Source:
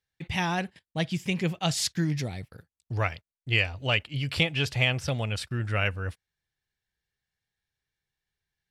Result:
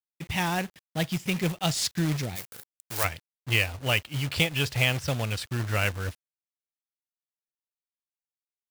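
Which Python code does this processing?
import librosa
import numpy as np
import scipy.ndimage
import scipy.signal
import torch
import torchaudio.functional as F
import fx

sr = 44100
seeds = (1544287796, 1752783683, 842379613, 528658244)

y = fx.quant_companded(x, sr, bits=4)
y = fx.riaa(y, sr, side='recording', at=(2.35, 3.03), fade=0.02)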